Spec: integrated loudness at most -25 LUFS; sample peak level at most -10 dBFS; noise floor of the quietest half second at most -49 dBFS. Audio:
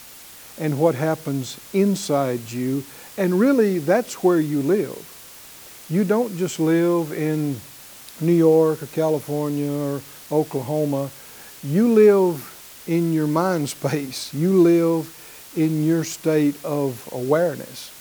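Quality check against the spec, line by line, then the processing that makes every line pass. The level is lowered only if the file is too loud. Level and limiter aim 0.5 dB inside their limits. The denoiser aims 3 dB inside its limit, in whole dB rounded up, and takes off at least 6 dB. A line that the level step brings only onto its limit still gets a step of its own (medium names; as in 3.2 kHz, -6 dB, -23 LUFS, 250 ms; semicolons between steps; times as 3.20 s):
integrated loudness -21.0 LUFS: fail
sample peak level -5.0 dBFS: fail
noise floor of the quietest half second -42 dBFS: fail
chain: noise reduction 6 dB, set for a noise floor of -42 dBFS; trim -4.5 dB; peak limiter -10.5 dBFS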